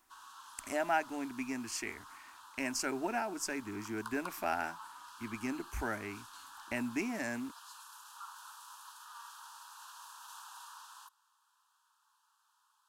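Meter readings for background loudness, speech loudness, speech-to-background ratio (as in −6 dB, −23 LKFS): −51.5 LKFS, −37.5 LKFS, 14.0 dB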